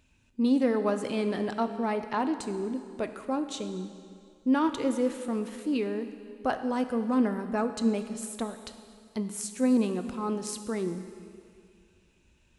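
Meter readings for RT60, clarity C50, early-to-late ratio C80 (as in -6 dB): 2.3 s, 9.5 dB, 10.5 dB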